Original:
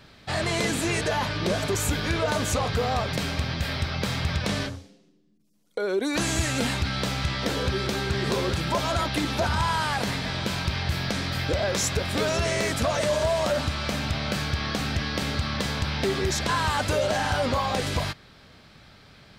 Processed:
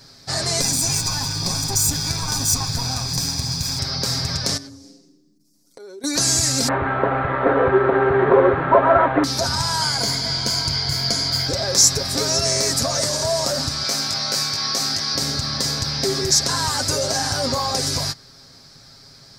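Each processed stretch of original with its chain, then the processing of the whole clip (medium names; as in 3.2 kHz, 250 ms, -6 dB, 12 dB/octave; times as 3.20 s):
0.61–3.79 s: comb filter that takes the minimum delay 0.84 ms + peaking EQ 1.4 kHz -4.5 dB 1.4 oct + comb 1.2 ms, depth 39%
4.57–6.04 s: peaking EQ 260 Hz +11.5 dB 0.71 oct + band-stop 250 Hz, Q 6 + compression 4:1, threshold -42 dBFS
6.68–9.24 s: CVSD coder 16 kbps + high-order bell 750 Hz +13.5 dB 2.9 oct
9.81–11.48 s: rippled EQ curve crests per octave 1.8, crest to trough 11 dB + loudspeaker Doppler distortion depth 0.1 ms
13.83–15.15 s: high-pass 400 Hz 6 dB/octave + doubling 19 ms -3.5 dB
whole clip: resonant high shelf 3.9 kHz +9 dB, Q 3; comb 7.4 ms, depth 55%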